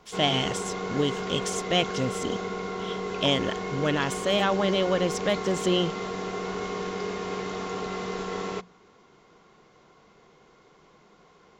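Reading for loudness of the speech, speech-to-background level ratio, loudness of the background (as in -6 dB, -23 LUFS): -27.0 LUFS, 5.5 dB, -32.5 LUFS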